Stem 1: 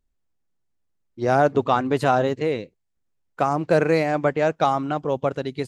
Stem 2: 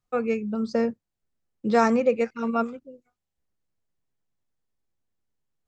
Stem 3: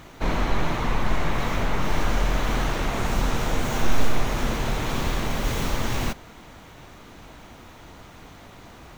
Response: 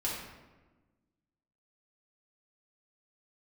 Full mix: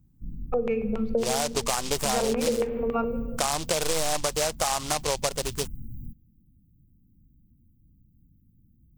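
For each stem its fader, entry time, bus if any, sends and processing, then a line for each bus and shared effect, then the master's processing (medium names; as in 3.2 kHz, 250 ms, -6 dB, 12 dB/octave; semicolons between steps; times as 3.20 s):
+1.0 dB, 0.00 s, bus A, no send, delay time shaken by noise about 3.8 kHz, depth 0.15 ms
-7.0 dB, 0.40 s, bus A, send -13 dB, bass shelf 240 Hz +7 dB; small resonant body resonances 240/450/740 Hz, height 9 dB; LFO low-pass square 3.6 Hz 480–2700 Hz
-11.0 dB, 0.00 s, no bus, no send, inverse Chebyshev band-stop 560–8400 Hz, stop band 50 dB
bus A: 0.0 dB, graphic EQ 125/250/1000/4000/8000 Hz -3/-12/+6/-4/+8 dB; peak limiter -8 dBFS, peak gain reduction 8.5 dB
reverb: on, RT60 1.2 s, pre-delay 3 ms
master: compression, threshold -22 dBFS, peak gain reduction 10 dB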